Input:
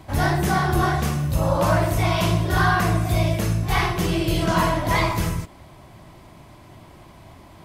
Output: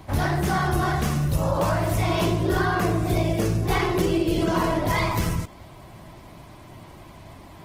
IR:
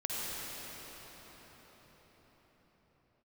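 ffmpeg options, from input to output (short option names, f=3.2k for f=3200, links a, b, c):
-filter_complex "[0:a]asettb=1/sr,asplit=3[a][b][c];[a]atrim=end=2.094[d];[b]atrim=start=2.09:end=4.87,asetpts=PTS-STARTPTS,afade=t=in:d=0.004:c=qsin,afade=t=out:st=2.776:d=0.004:c=qsin,equalizer=f=390:t=o:w=0.84:g=11[e];[c]atrim=start=4.866[f];[d][e]acrossfade=d=0.004:c1=hsin:c2=qsin[g];[g][f]acrossfade=d=0.004:c1=qsin:c2=hsin,acompressor=threshold=-20dB:ratio=8,volume=1.5dB" -ar 48000 -c:a libopus -b:a 16k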